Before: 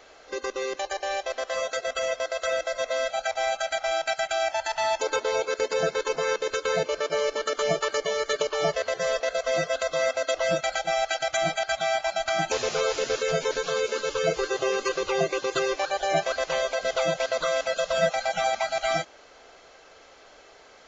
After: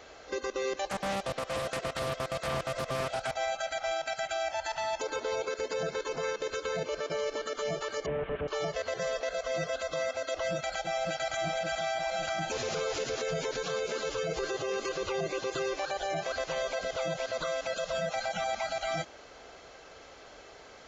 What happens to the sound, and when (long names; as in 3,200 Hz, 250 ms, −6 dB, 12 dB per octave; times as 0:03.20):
0:00.86–0:03.31: highs frequency-modulated by the lows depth 0.45 ms
0:08.06–0:08.48: linear delta modulator 16 kbit/s, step −40 dBFS
0:10.41–0:11.25: delay throw 560 ms, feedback 70%, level −6.5 dB
whole clip: high-pass filter 76 Hz 6 dB per octave; low-shelf EQ 180 Hz +12 dB; brickwall limiter −24.5 dBFS